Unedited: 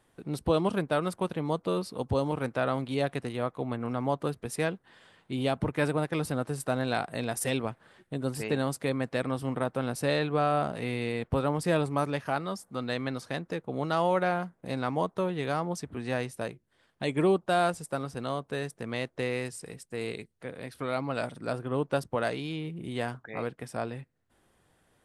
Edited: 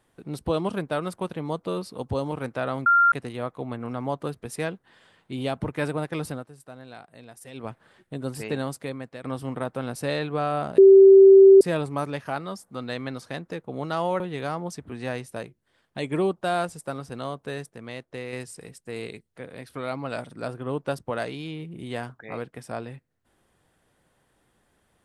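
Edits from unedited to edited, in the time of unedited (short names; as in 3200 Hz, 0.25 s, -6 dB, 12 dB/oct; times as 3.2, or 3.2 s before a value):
2.86–3.12 bleep 1390 Hz -14 dBFS
6.29–7.71 dip -14.5 dB, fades 0.18 s
8.61–9.24 fade out, to -12.5 dB
10.78–11.61 bleep 388 Hz -7.5 dBFS
14.2–15.25 cut
18.75–19.38 gain -4.5 dB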